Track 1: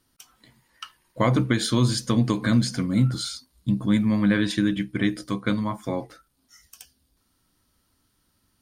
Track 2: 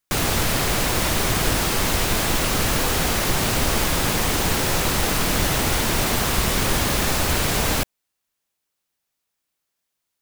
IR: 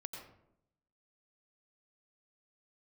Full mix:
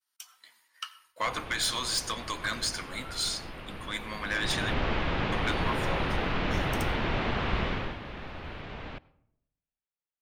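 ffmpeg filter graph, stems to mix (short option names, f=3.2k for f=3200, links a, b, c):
-filter_complex "[0:a]agate=range=-33dB:threshold=-59dB:ratio=3:detection=peak,highpass=1.1k,asoftclip=type=tanh:threshold=-24dB,volume=0.5dB,asplit=3[a][b][c];[a]atrim=end=4.74,asetpts=PTS-STARTPTS,afade=t=out:st=4.736:d=0.004:c=hsin[d];[b]atrim=start=4.74:end=5.32,asetpts=PTS-STARTPTS,volume=0[e];[c]atrim=start=5.32,asetpts=PTS-STARTPTS,afade=t=in:d=0.004:c=hsin[f];[d][e][f]concat=n=3:v=0:a=1,asplit=2[g][h];[h]volume=-8dB[i];[1:a]lowpass=f=3.2k:w=0.5412,lowpass=f=3.2k:w=1.3066,adelay=1150,volume=-7.5dB,afade=t=in:st=4.19:d=0.6:silence=0.223872,afade=t=out:st=7.64:d=0.33:silence=0.266073,asplit=2[j][k];[k]volume=-15dB[l];[2:a]atrim=start_sample=2205[m];[i][l]amix=inputs=2:normalize=0[n];[n][m]afir=irnorm=-1:irlink=0[o];[g][j][o]amix=inputs=3:normalize=0"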